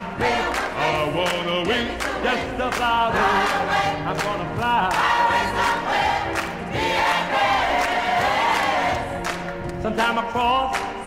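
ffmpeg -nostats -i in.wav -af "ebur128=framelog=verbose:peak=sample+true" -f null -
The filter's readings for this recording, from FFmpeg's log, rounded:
Integrated loudness:
  I:         -21.2 LUFS
  Threshold: -31.2 LUFS
Loudness range:
  LRA:         1.3 LU
  Threshold: -40.9 LUFS
  LRA low:   -21.5 LUFS
  LRA high:  -20.3 LUFS
Sample peak:
  Peak:       -7.2 dBFS
True peak:
  Peak:       -7.2 dBFS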